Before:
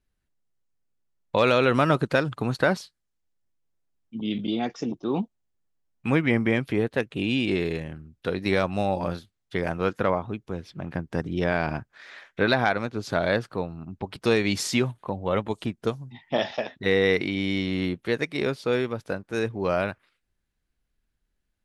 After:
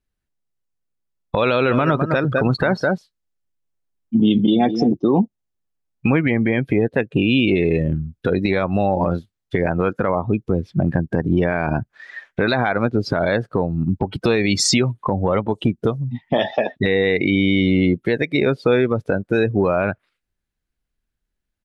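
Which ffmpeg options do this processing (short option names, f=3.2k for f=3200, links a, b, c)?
-filter_complex "[0:a]asplit=3[a][b][c];[a]afade=t=out:st=1.67:d=0.02[d];[b]aecho=1:1:207:0.282,afade=t=in:st=1.67:d=0.02,afade=t=out:st=4.93:d=0.02[e];[c]afade=t=in:st=4.93:d=0.02[f];[d][e][f]amix=inputs=3:normalize=0,afftdn=nr=22:nf=-33,acompressor=threshold=-32dB:ratio=6,alimiter=level_in=26dB:limit=-1dB:release=50:level=0:latency=1,volume=-6dB"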